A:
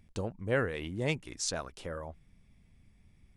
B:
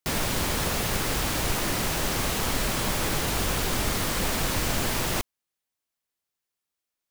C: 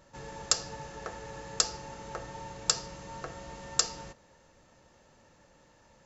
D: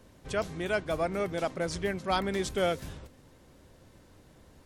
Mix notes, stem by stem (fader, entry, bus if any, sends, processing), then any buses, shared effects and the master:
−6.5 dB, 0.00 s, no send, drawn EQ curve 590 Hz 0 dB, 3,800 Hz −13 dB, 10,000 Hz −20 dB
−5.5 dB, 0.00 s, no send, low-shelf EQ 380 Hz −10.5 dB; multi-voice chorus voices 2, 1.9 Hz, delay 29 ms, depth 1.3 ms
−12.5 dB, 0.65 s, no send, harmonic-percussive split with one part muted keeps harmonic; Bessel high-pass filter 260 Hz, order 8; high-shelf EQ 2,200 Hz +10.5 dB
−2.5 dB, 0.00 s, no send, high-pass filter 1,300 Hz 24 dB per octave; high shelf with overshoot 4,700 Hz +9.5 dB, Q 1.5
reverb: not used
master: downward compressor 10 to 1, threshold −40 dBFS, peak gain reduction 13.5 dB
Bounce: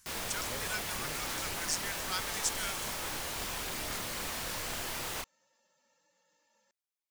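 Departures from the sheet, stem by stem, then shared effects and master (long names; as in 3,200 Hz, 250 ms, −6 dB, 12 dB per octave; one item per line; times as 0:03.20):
stem A −6.5 dB → −16.5 dB
master: missing downward compressor 10 to 1, threshold −40 dBFS, peak gain reduction 13.5 dB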